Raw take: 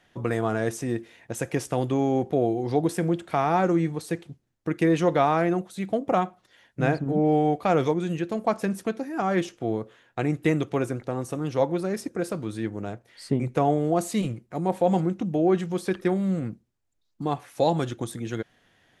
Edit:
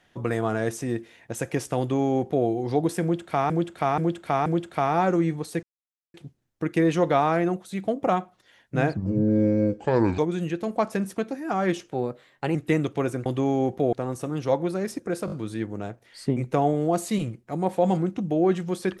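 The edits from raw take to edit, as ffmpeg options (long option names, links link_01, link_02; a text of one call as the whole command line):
ffmpeg -i in.wav -filter_complex "[0:a]asplit=14[link_01][link_02][link_03][link_04][link_05][link_06][link_07][link_08][link_09][link_10][link_11][link_12][link_13][link_14];[link_01]atrim=end=3.502[link_15];[link_02]atrim=start=3.018:end=3.502[link_16];[link_03]atrim=start=3.018:end=3.502[link_17];[link_04]atrim=start=3.018:end=4.19,asetpts=PTS-STARTPTS,afade=type=out:start_time=1.168:duration=0.004:curve=hsin,apad=pad_dur=0.51[link_18];[link_05]atrim=start=4.19:end=7.024,asetpts=PTS-STARTPTS,afade=type=in:duration=0.004:curve=hsin[link_19];[link_06]atrim=start=7.02:end=7.87,asetpts=PTS-STARTPTS,asetrate=30870,aresample=44100[link_20];[link_07]atrim=start=7.866:end=9.604[link_21];[link_08]atrim=start=9.6:end=10.31,asetpts=PTS-STARTPTS,asetrate=49392,aresample=44100,atrim=end_sample=27956,asetpts=PTS-STARTPTS[link_22];[link_09]atrim=start=10.306:end=11.022[link_23];[link_10]atrim=start=1.788:end=2.462[link_24];[link_11]atrim=start=11.018:end=12.372[link_25];[link_12]atrim=start=12.348:end=12.372[link_26];[link_13]atrim=start=12.348:end=12.372[link_27];[link_14]atrim=start=12.348[link_28];[link_15][link_16]acrossfade=duration=0.004:curve1=hsin:curve2=hsin[link_29];[link_29][link_17]acrossfade=duration=0.004:curve1=hsin:curve2=hsin[link_30];[link_18][link_19]concat=n=2:v=0:a=1[link_31];[link_30][link_31]acrossfade=duration=0.004:curve1=hsin:curve2=hsin[link_32];[link_32][link_20]acrossfade=duration=0.004:curve1=hsin:curve2=hsin[link_33];[link_33][link_21]acrossfade=duration=0.004:curve1=hsin:curve2=hsin[link_34];[link_34][link_22]acrossfade=duration=0.004:curve1=hsin:curve2=hsin[link_35];[link_35][link_23]acrossfade=duration=0.004:curve1=hsin:curve2=hsin[link_36];[link_36][link_24]acrossfade=duration=0.004:curve1=hsin:curve2=hsin[link_37];[link_37][link_25]acrossfade=duration=0.004:curve1=hsin:curve2=hsin[link_38];[link_38][link_26]acrossfade=duration=0.004:curve1=hsin:curve2=hsin[link_39];[link_39][link_27]acrossfade=duration=0.004:curve1=hsin:curve2=hsin[link_40];[link_40][link_28]acrossfade=duration=0.004:curve1=hsin:curve2=hsin" out.wav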